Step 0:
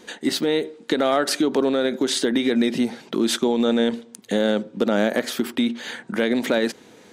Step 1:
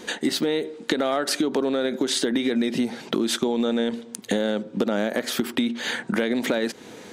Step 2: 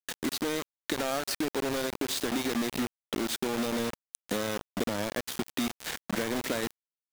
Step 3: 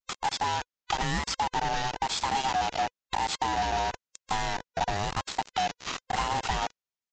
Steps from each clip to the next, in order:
downward compressor 4 to 1, threshold −28 dBFS, peak gain reduction 11.5 dB; level +6.5 dB
bit reduction 4 bits; level −8.5 dB
neighbouring bands swapped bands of 500 Hz; downsampling to 16,000 Hz; pitch vibrato 1 Hz 91 cents; level +2.5 dB

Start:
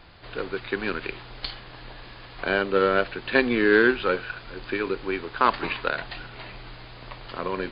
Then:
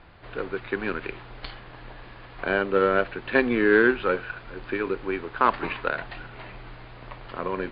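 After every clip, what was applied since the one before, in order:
low-pass filter 2,500 Hz 12 dB per octave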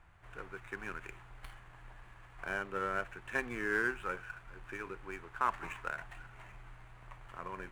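running median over 9 samples
octave-band graphic EQ 250/500/4,000 Hz −10/−9/−7 dB
level −8.5 dB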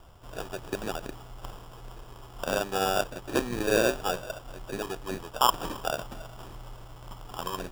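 decimation without filtering 21×
level +9 dB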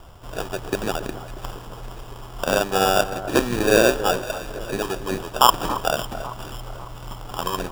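delay that swaps between a low-pass and a high-pass 276 ms, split 1,500 Hz, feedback 65%, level −12.5 dB
level +8 dB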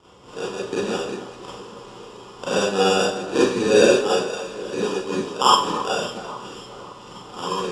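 loudspeaker in its box 140–8,000 Hz, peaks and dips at 450 Hz +6 dB, 670 Hz −10 dB, 1,600 Hz −6 dB
four-comb reverb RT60 0.41 s, combs from 31 ms, DRR −7.5 dB
level −6.5 dB

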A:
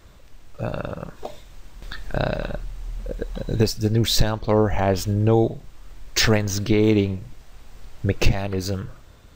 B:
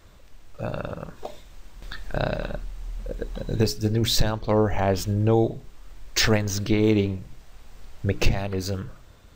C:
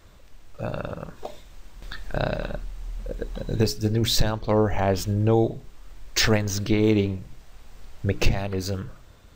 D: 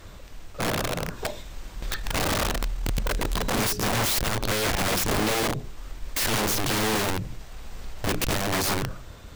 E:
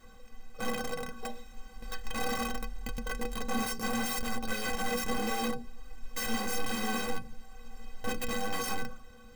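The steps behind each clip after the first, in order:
mains-hum notches 60/120/180/240/300/360/420 Hz; level −2 dB
no processing that can be heard
tube saturation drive 25 dB, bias 0.2; wrap-around overflow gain 29 dB; level +8.5 dB
in parallel at −3.5 dB: decimation without filtering 9×; on the sum: stiff-string resonator 230 Hz, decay 0.2 s, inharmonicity 0.03

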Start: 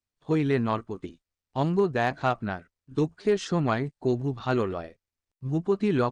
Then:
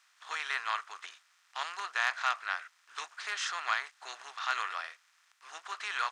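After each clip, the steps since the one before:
compressor on every frequency bin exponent 0.6
high-pass filter 1,200 Hz 24 dB per octave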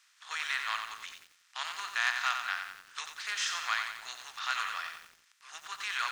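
tilt shelving filter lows −7.5 dB
feedback echo at a low word length 90 ms, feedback 55%, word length 8 bits, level −6 dB
level −4 dB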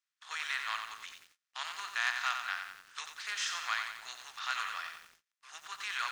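noise gate −60 dBFS, range −23 dB
level −2.5 dB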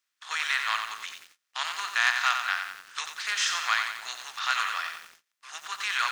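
low-shelf EQ 150 Hz −10 dB
level +8.5 dB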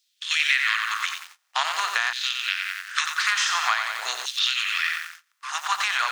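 downward compressor 6 to 1, threshold −30 dBFS, peak gain reduction 12 dB
auto-filter high-pass saw down 0.47 Hz 390–4,000 Hz
level +8.5 dB

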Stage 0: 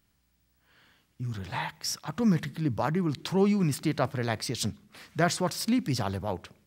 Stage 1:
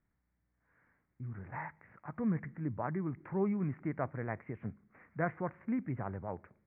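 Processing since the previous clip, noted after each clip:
Butterworth low-pass 2,200 Hz 72 dB per octave
level −8.5 dB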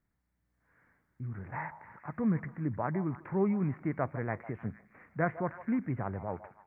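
automatic gain control gain up to 3.5 dB
echo through a band-pass that steps 152 ms, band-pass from 770 Hz, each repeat 0.7 octaves, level −11.5 dB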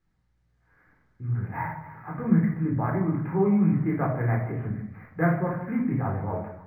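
rectangular room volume 620 cubic metres, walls furnished, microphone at 3.9 metres
linearly interpolated sample-rate reduction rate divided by 3×

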